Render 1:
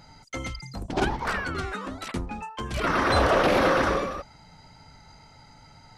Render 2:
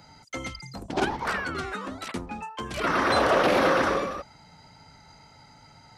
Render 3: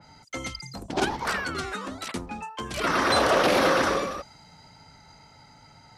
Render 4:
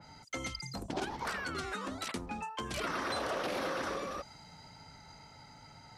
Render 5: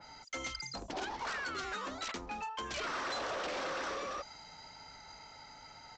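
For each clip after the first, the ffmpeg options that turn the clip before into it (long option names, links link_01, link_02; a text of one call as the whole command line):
ffmpeg -i in.wav -filter_complex "[0:a]acrossover=split=170|3700[link_01][link_02][link_03];[link_01]asoftclip=type=tanh:threshold=-34dB[link_04];[link_04][link_02][link_03]amix=inputs=3:normalize=0,highpass=frequency=90:poles=1" out.wav
ffmpeg -i in.wav -af "adynamicequalizer=threshold=0.00794:dfrequency=3400:dqfactor=0.7:tfrequency=3400:tqfactor=0.7:attack=5:release=100:ratio=0.375:range=3.5:mode=boostabove:tftype=highshelf" out.wav
ffmpeg -i in.wav -af "acompressor=threshold=-33dB:ratio=4,volume=-2dB" out.wav
ffmpeg -i in.wav -af "equalizer=frequency=130:width=0.57:gain=-13,aresample=16000,asoftclip=type=tanh:threshold=-37dB,aresample=44100,volume=3.5dB" out.wav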